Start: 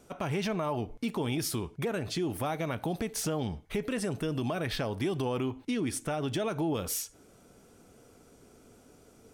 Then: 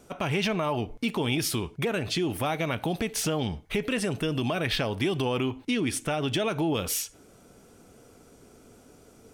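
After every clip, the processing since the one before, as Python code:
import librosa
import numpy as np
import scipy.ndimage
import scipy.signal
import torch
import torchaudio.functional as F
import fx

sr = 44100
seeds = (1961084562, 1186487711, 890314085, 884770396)

y = fx.dynamic_eq(x, sr, hz=2800.0, q=1.4, threshold_db=-55.0, ratio=4.0, max_db=7)
y = y * librosa.db_to_amplitude(3.5)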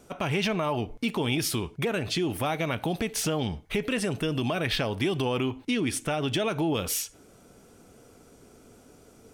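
y = x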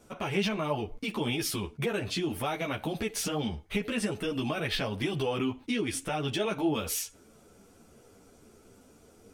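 y = fx.ensemble(x, sr)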